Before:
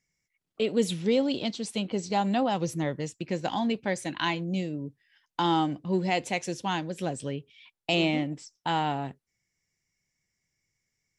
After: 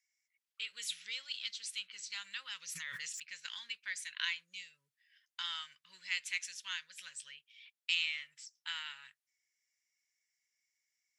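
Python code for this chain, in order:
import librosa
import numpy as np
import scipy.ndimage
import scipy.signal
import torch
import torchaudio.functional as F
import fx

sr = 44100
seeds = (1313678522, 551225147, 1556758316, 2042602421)

y = scipy.signal.sosfilt(scipy.signal.cheby2(4, 40, 790.0, 'highpass', fs=sr, output='sos'), x)
y = fx.env_flatten(y, sr, amount_pct=100, at=(2.69, 3.2))
y = F.gain(torch.from_numpy(y), -3.5).numpy()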